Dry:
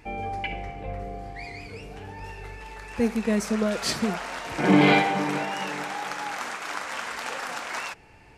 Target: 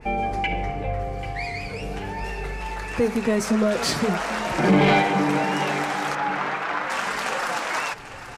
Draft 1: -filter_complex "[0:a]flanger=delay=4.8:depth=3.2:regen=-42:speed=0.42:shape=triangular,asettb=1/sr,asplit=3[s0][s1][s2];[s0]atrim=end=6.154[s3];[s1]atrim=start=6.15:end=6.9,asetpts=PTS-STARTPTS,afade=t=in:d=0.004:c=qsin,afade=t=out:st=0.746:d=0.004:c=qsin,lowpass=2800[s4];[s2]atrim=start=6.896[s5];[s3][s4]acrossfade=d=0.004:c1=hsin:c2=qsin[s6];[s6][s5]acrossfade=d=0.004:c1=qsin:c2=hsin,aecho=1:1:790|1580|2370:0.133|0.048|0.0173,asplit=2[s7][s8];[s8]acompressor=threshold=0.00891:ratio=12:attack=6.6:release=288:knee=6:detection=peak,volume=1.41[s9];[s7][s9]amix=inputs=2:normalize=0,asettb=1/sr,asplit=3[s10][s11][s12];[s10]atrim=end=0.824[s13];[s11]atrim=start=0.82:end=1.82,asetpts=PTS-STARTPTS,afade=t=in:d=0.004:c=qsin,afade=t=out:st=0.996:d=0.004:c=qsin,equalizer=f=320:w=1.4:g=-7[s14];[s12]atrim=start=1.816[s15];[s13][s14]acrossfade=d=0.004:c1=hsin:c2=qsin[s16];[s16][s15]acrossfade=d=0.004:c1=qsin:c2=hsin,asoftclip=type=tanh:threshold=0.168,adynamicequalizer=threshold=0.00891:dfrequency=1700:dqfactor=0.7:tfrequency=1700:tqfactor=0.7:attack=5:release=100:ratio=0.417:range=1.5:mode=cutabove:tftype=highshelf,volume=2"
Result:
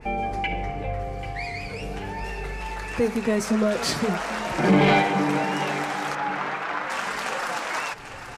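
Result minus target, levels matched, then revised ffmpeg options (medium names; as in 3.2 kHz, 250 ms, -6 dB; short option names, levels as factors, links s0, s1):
compression: peak gain reduction +6.5 dB
-filter_complex "[0:a]flanger=delay=4.8:depth=3.2:regen=-42:speed=0.42:shape=triangular,asettb=1/sr,asplit=3[s0][s1][s2];[s0]atrim=end=6.154[s3];[s1]atrim=start=6.15:end=6.9,asetpts=PTS-STARTPTS,afade=t=in:d=0.004:c=qsin,afade=t=out:st=0.746:d=0.004:c=qsin,lowpass=2800[s4];[s2]atrim=start=6.896[s5];[s3][s4]acrossfade=d=0.004:c1=hsin:c2=qsin[s6];[s6][s5]acrossfade=d=0.004:c1=qsin:c2=hsin,aecho=1:1:790|1580|2370:0.133|0.048|0.0173,asplit=2[s7][s8];[s8]acompressor=threshold=0.02:ratio=12:attack=6.6:release=288:knee=6:detection=peak,volume=1.41[s9];[s7][s9]amix=inputs=2:normalize=0,asettb=1/sr,asplit=3[s10][s11][s12];[s10]atrim=end=0.824[s13];[s11]atrim=start=0.82:end=1.82,asetpts=PTS-STARTPTS,afade=t=in:d=0.004:c=qsin,afade=t=out:st=0.996:d=0.004:c=qsin,equalizer=f=320:w=1.4:g=-7[s14];[s12]atrim=start=1.816[s15];[s13][s14]acrossfade=d=0.004:c1=hsin:c2=qsin[s16];[s16][s15]acrossfade=d=0.004:c1=qsin:c2=hsin,asoftclip=type=tanh:threshold=0.168,adynamicequalizer=threshold=0.00891:dfrequency=1700:dqfactor=0.7:tfrequency=1700:tqfactor=0.7:attack=5:release=100:ratio=0.417:range=1.5:mode=cutabove:tftype=highshelf,volume=2"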